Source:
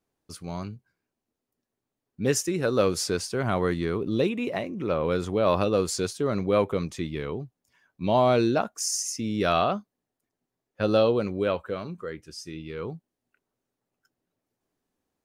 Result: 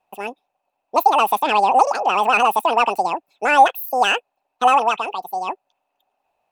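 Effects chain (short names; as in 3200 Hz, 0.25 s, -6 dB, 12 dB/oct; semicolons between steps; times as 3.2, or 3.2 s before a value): soft clip -13.5 dBFS, distortion -20 dB; small resonant body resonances 330/1100 Hz, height 18 dB, ringing for 35 ms; speed mistake 33 rpm record played at 78 rpm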